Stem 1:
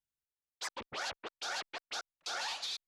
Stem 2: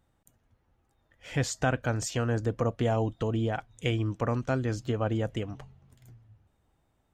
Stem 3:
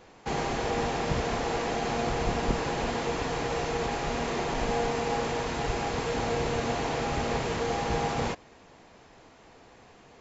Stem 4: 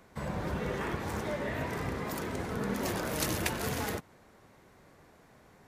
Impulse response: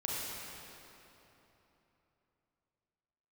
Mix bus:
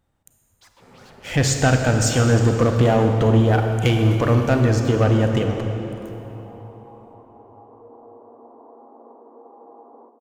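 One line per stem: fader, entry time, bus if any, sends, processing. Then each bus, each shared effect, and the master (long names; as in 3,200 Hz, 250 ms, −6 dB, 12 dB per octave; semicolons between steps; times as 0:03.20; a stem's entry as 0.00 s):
−15.0 dB, 0.00 s, send −5.5 dB, wave folding −34 dBFS
+0.5 dB, 0.00 s, send −3.5 dB, leveller curve on the samples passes 2
−17.0 dB, 1.75 s, send −9.5 dB, Chebyshev band-pass filter 250–1,100 Hz, order 4
−10.0 dB, 0.65 s, send −7 dB, ring modulation 320 Hz; automatic ducking −13 dB, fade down 1.80 s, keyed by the second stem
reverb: on, RT60 3.4 s, pre-delay 31 ms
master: no processing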